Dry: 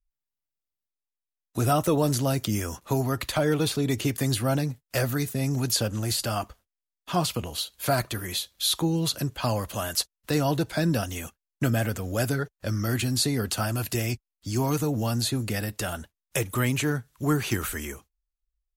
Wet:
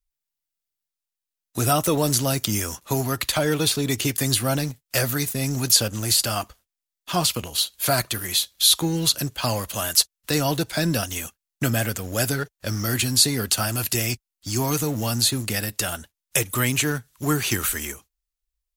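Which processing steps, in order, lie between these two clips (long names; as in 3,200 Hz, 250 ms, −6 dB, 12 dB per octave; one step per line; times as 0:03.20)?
high-shelf EQ 2,100 Hz +9 dB
in parallel at −8 dB: centre clipping without the shift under −27 dBFS
on the sum: level −2 dB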